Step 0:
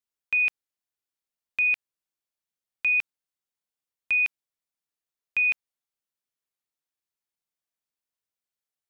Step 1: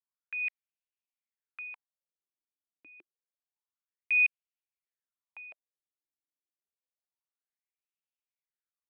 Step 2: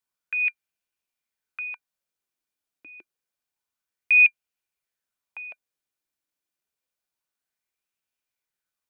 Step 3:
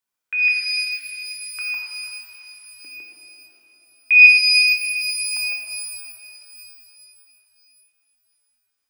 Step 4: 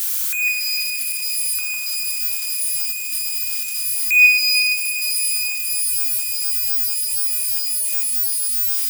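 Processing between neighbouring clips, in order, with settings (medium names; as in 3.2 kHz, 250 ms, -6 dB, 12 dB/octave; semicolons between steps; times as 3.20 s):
wah-wah 0.28 Hz 290–2700 Hz, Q 5.4
small resonant body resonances 1.5/2.4 kHz, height 9 dB, ringing for 65 ms; trim +7.5 dB
bass shelf 320 Hz -3 dB; pitch-shifted reverb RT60 3.5 s, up +12 st, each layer -8 dB, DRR -2.5 dB; trim +1.5 dB
zero-crossing glitches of -14.5 dBFS; trim -3 dB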